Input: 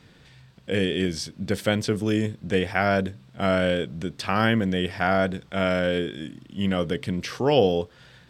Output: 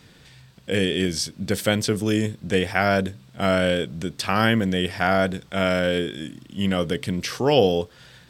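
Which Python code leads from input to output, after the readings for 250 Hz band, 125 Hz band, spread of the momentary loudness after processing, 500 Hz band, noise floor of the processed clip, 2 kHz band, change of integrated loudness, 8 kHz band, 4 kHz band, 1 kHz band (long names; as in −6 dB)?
+1.5 dB, +1.5 dB, 8 LU, +1.5 dB, −51 dBFS, +2.5 dB, +2.0 dB, +7.5 dB, +4.0 dB, +2.0 dB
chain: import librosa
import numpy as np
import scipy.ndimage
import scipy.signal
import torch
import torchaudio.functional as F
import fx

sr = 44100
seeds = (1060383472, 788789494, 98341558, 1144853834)

y = fx.high_shelf(x, sr, hz=5500.0, db=9.5)
y = y * librosa.db_to_amplitude(1.5)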